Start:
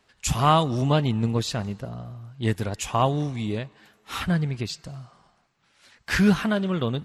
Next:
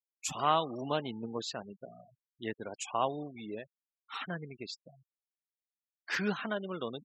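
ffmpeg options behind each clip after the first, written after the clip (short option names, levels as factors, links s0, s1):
-af "highpass=310,afftfilt=real='re*gte(hypot(re,im),0.0251)':imag='im*gte(hypot(re,im),0.0251)':win_size=1024:overlap=0.75,volume=0.398"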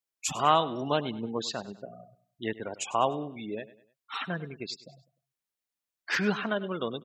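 -af "aecho=1:1:100|200|300:0.141|0.0551|0.0215,volume=1.78"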